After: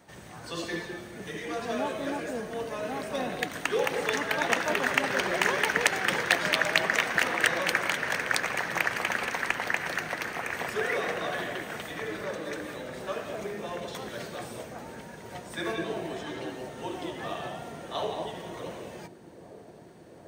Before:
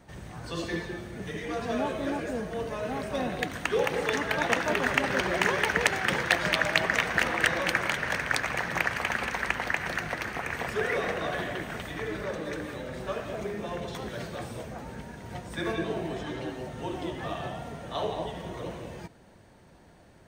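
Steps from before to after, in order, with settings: HPF 250 Hz 6 dB/oct; high shelf 6100 Hz +4.5 dB; on a send: dark delay 0.742 s, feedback 83%, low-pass 480 Hz, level -13.5 dB

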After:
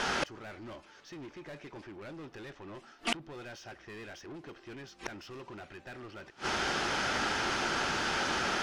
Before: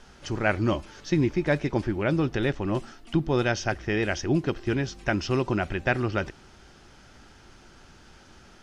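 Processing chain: overdrive pedal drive 29 dB, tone 3100 Hz, clips at -9.5 dBFS; flipped gate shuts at -21 dBFS, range -31 dB; gain +3 dB

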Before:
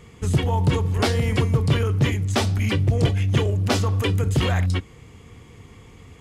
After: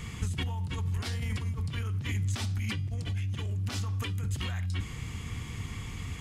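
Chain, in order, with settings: negative-ratio compressor -30 dBFS, ratio -1; bell 490 Hz -13.5 dB 1.6 oct; de-hum 405.2 Hz, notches 28

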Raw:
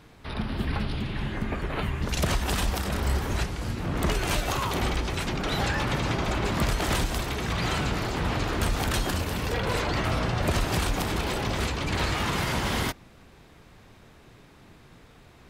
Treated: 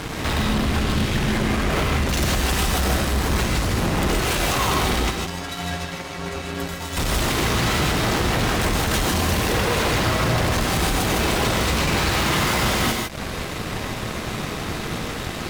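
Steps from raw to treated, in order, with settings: compressor 4:1, threshold -40 dBFS, peak gain reduction 16 dB; 5.1–6.97 metallic resonator 82 Hz, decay 0.81 s, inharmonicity 0.03; fuzz box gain 49 dB, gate -54 dBFS; non-linear reverb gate 0.18 s rising, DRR 1 dB; gain -7.5 dB

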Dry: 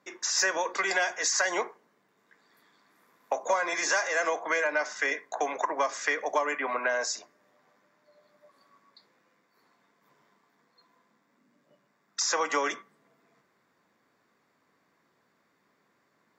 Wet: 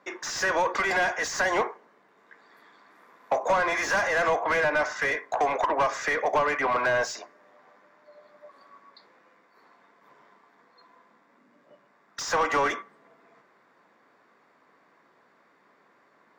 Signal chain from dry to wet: overdrive pedal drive 20 dB, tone 1100 Hz, clips at -13 dBFS

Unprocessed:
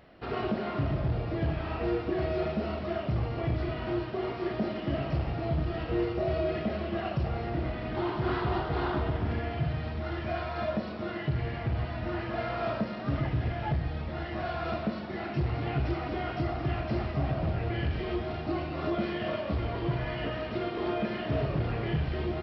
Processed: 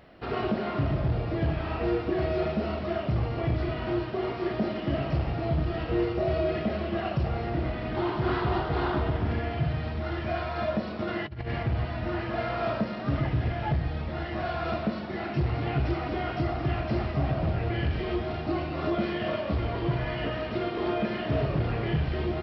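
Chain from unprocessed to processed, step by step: 10.99–11.63 negative-ratio compressor -34 dBFS, ratio -0.5; gain +2.5 dB

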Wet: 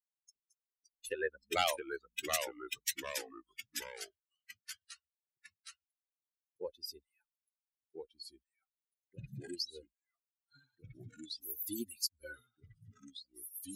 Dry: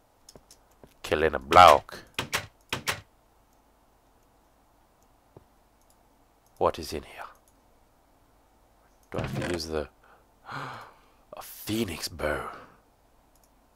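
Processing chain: per-bin expansion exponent 3; tilt +3 dB/oct; compressor 1.5:1, threshold -50 dBFS, peak gain reduction 13.5 dB; bell 1100 Hz -4 dB 0.87 oct, from 1.33 s -14.5 dB; echoes that change speed 0.533 s, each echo -2 st, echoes 3, each echo -6 dB; gain +4 dB

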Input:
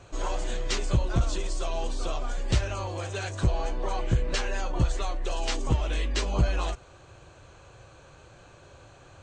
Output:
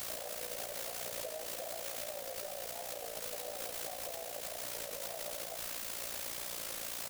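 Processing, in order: one-sided fold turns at -24.5 dBFS; echo 0.498 s -5 dB; compressor 8:1, threshold -33 dBFS, peak gain reduction 15 dB; Butterworth band-pass 610 Hz, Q 2.8; added harmonics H 7 -28 dB, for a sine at -34 dBFS; tempo 1.3×; requantised 8-bit, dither triangular; AM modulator 58 Hz, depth 50%; limiter -43.5 dBFS, peak gain reduction 10.5 dB; record warp 33 1/3 rpm, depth 100 cents; gain +11 dB

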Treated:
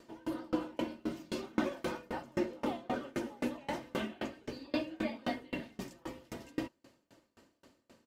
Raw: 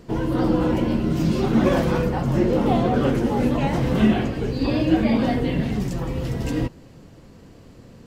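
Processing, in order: HPF 520 Hz 6 dB/oct; comb 3.3 ms, depth 46%; dB-ramp tremolo decaying 3.8 Hz, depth 31 dB; gain -4 dB

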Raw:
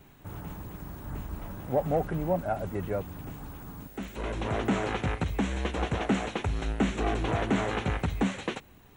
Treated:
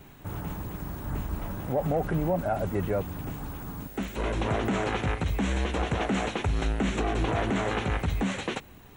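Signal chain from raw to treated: limiter -23 dBFS, peak gain reduction 8.5 dB; gain +5 dB

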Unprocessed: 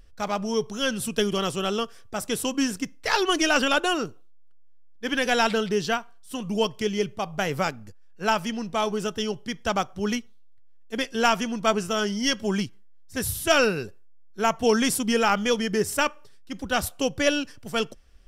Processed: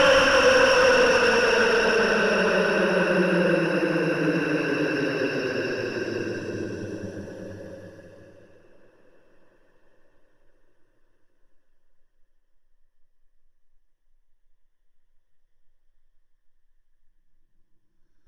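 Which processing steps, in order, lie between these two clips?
Paulstretch 25×, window 0.10 s, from 13.59; harmonic-percussive split percussive +9 dB; overdrive pedal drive 18 dB, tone 1100 Hz, clips at -4 dBFS; ripple EQ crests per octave 1.2, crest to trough 9 dB; gain -3 dB

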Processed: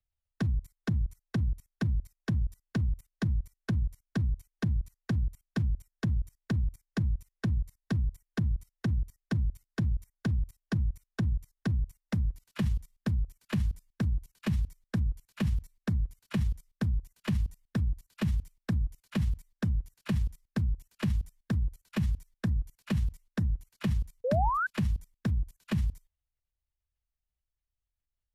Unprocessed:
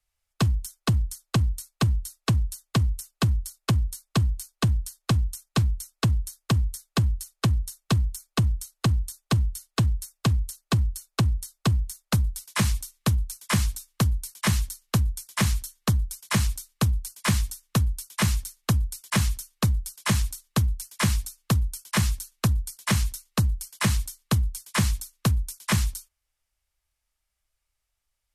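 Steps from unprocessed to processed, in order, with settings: tone controls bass +11 dB, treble -13 dB; formant shift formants +5 st; level quantiser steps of 20 dB; painted sound rise, 24.24–24.67, 470–1600 Hz -22 dBFS; gain -6.5 dB

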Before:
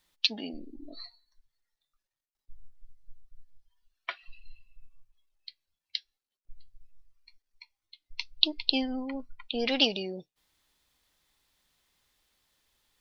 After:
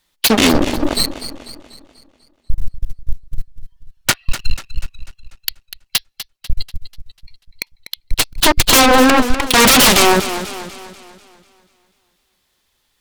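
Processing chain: sample leveller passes 5; sine folder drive 16 dB, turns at -2 dBFS; warbling echo 0.245 s, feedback 48%, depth 91 cents, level -12 dB; gain -3 dB

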